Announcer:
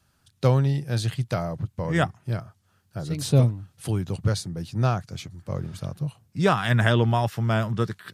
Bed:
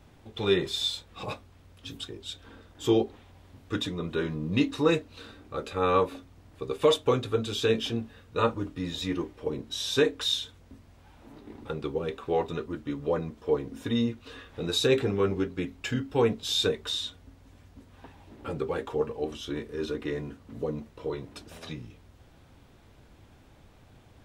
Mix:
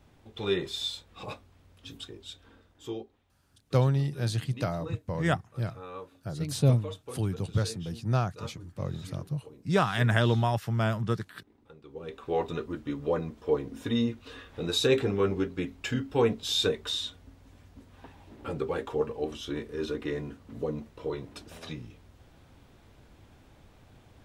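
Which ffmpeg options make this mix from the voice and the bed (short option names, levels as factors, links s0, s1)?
-filter_complex "[0:a]adelay=3300,volume=0.631[s0];[1:a]volume=5.01,afade=t=out:st=2.15:d=0.94:silence=0.188365,afade=t=in:st=11.86:d=0.6:silence=0.125893[s1];[s0][s1]amix=inputs=2:normalize=0"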